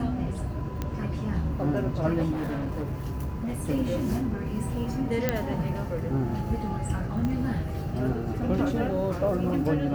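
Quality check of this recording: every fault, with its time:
0:00.82: click −17 dBFS
0:02.31–0:03.60: clipping −27 dBFS
0:05.29: click −10 dBFS
0:07.25: click −19 dBFS

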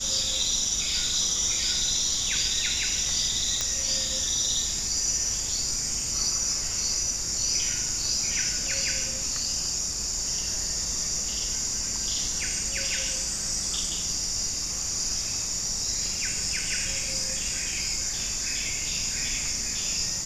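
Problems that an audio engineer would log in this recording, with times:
0:03.61: click −11 dBFS

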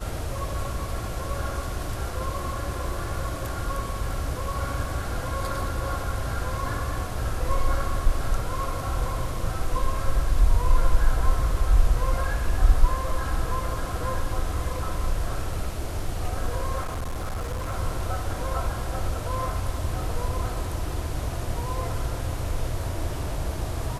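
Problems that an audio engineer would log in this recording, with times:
0:16.82–0:17.73: clipping −26 dBFS

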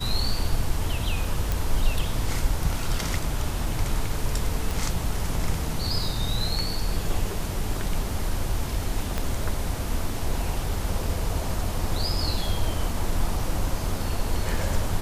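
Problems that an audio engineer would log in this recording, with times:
0:01.52: click
0:04.71: click
0:09.18: click −13 dBFS

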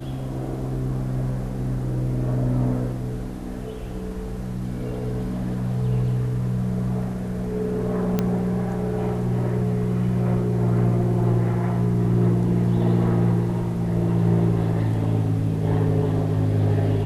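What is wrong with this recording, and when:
0:08.19: click −9 dBFS

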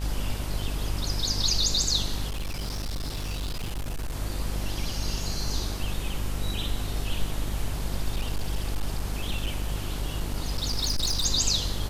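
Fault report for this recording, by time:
mains buzz 50 Hz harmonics 37 −32 dBFS
0:02.28–0:04.16: clipping −27.5 dBFS
0:08.16–0:11.26: clipping −22 dBFS

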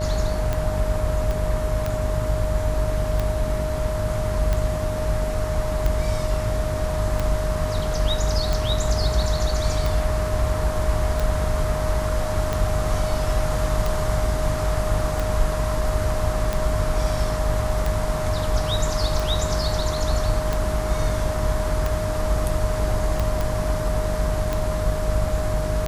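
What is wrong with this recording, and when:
mains buzz 50 Hz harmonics 31 −27 dBFS
scratch tick 45 rpm −11 dBFS
whistle 620 Hz −27 dBFS
0:01.31: click
0:23.41: click

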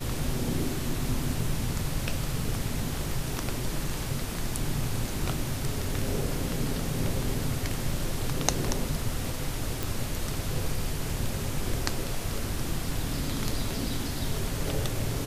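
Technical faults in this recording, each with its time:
0:09.83: click

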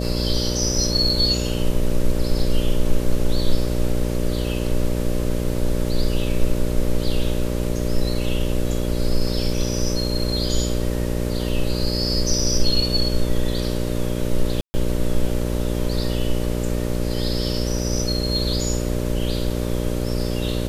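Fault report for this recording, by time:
mains buzz 60 Hz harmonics 10 −24 dBFS
0:14.61–0:14.74: drop-out 130 ms

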